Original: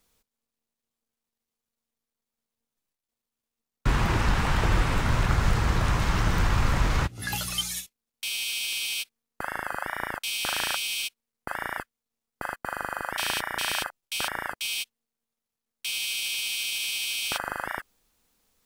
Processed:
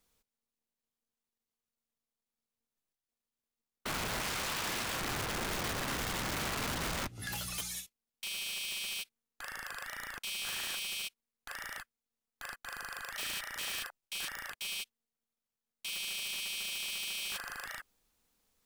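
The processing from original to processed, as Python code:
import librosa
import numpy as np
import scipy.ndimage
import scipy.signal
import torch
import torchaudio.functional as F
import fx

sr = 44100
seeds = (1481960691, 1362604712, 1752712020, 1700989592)

y = (np.mod(10.0 ** (21.5 / 20.0) * x + 1.0, 2.0) - 1.0) / 10.0 ** (21.5 / 20.0)
y = fx.tilt_eq(y, sr, slope=2.0, at=(4.21, 5.01))
y = 10.0 ** (-26.5 / 20.0) * np.tanh(y / 10.0 ** (-26.5 / 20.0))
y = y * 10.0 ** (-6.0 / 20.0)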